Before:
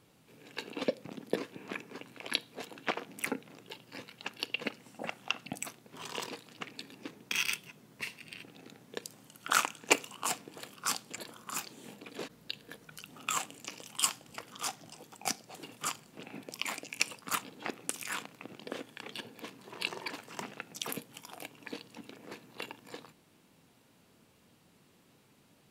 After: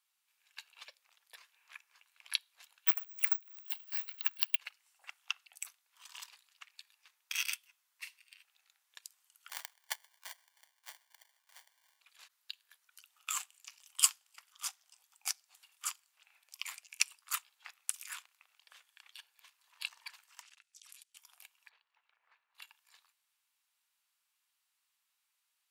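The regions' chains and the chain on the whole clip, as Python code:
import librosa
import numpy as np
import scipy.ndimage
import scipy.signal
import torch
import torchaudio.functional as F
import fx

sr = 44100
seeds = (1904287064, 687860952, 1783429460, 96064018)

y = fx.chain(x, sr, fx.high_shelf(hz=8100.0, db=-10.0),
    fx.resample_bad(factor=2, down='filtered', up='zero_stuff'),
    fx.band_squash(depth_pct=70), at=(2.87, 4.56))
y = fx.chain(y, sr, fx.sample_hold(seeds[0], rate_hz=1300.0, jitter_pct=0),
    fx.echo_feedback(ms=128, feedback_pct=28, wet_db=-20.5), at=(9.49, 12.0))
y = fx.chain(y, sr, fx.weighting(curve='ITU-R 468'),
    fx.level_steps(step_db=24), at=(20.41, 21.17))
y = fx.chain(y, sr, fx.lowpass(hz=1800.0, slope=12),
    fx.band_squash(depth_pct=40), at=(21.69, 22.55))
y = scipy.signal.sosfilt(scipy.signal.cheby2(4, 80, 160.0, 'highpass', fs=sr, output='sos'), y)
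y = fx.tilt_eq(y, sr, slope=2.5)
y = fx.upward_expand(y, sr, threshold_db=-46.0, expansion=1.5)
y = F.gain(torch.from_numpy(y), -3.5).numpy()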